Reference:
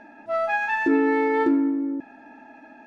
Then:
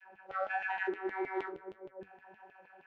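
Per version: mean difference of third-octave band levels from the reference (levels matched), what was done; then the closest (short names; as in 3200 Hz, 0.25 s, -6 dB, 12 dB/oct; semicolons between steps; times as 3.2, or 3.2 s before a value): 7.0 dB: compressor, threshold -23 dBFS, peak gain reduction 7.5 dB; vocoder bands 32, saw 191 Hz; LFO high-pass saw down 6.4 Hz 230–3000 Hz; flange 1.6 Hz, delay 6.9 ms, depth 5.7 ms, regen +64%; gain -7 dB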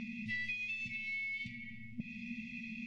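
18.5 dB: FFT band-reject 240–1900 Hz; compressor 8:1, threshold -52 dBFS, peak gain reduction 18.5 dB; air absorption 110 m; shoebox room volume 3700 m³, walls furnished, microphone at 0.44 m; gain +15.5 dB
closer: first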